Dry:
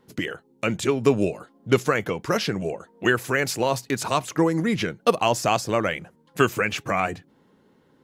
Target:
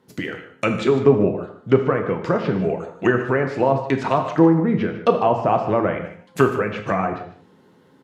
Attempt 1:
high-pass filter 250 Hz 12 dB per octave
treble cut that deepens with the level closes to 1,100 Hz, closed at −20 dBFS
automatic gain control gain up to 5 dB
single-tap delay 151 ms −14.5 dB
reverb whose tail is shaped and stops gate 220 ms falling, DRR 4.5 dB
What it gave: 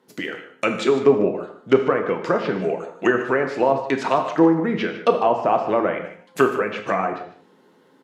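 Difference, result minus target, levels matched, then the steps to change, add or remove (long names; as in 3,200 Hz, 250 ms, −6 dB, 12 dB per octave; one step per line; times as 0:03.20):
125 Hz band −8.5 dB
change: high-pass filter 72 Hz 12 dB per octave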